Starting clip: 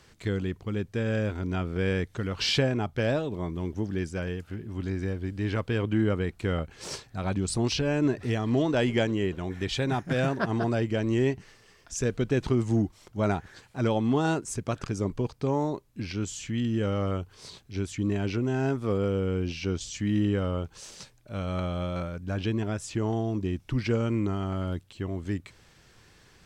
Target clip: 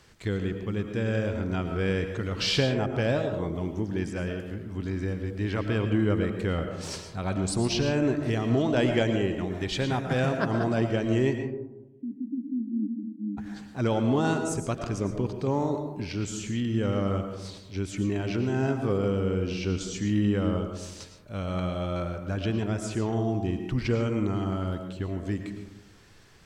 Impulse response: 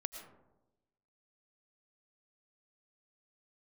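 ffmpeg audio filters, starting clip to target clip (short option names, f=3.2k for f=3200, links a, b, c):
-filter_complex "[0:a]asplit=3[a][b][c];[a]afade=t=out:st=11.36:d=0.02[d];[b]asuperpass=centerf=250:order=12:qfactor=2.4,afade=t=in:st=11.36:d=0.02,afade=t=out:st=13.37:d=0.02[e];[c]afade=t=in:st=13.37:d=0.02[f];[d][e][f]amix=inputs=3:normalize=0[g];[1:a]atrim=start_sample=2205[h];[g][h]afir=irnorm=-1:irlink=0,volume=2dB"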